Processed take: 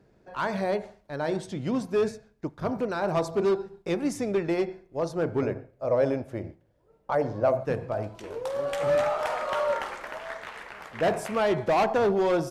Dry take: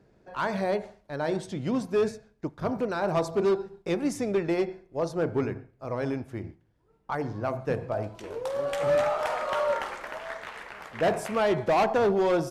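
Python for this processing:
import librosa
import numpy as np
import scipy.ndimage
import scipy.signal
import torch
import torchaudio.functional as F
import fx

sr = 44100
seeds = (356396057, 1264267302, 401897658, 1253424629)

y = fx.peak_eq(x, sr, hz=570.0, db=14.0, octaves=0.5, at=(5.42, 7.64))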